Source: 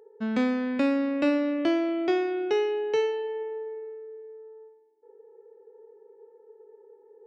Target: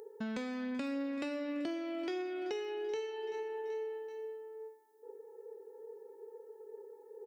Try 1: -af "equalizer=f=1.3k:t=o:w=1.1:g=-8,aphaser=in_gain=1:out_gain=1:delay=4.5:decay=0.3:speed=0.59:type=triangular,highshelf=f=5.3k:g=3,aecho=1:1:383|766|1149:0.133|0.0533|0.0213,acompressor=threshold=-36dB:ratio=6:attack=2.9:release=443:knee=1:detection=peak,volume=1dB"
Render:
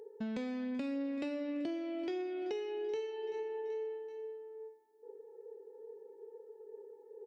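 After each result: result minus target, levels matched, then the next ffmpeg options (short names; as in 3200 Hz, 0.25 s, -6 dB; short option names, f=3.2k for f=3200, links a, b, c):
8000 Hz band -6.5 dB; 1000 Hz band -3.0 dB
-af "equalizer=f=1.3k:t=o:w=1.1:g=-8,aphaser=in_gain=1:out_gain=1:delay=4.5:decay=0.3:speed=0.59:type=triangular,highshelf=f=5.3k:g=15,aecho=1:1:383|766|1149:0.133|0.0533|0.0213,acompressor=threshold=-36dB:ratio=6:attack=2.9:release=443:knee=1:detection=peak,volume=1dB"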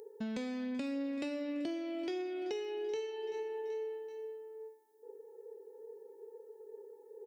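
1000 Hz band -3.0 dB
-af "aphaser=in_gain=1:out_gain=1:delay=4.5:decay=0.3:speed=0.59:type=triangular,highshelf=f=5.3k:g=15,aecho=1:1:383|766|1149:0.133|0.0533|0.0213,acompressor=threshold=-36dB:ratio=6:attack=2.9:release=443:knee=1:detection=peak,volume=1dB"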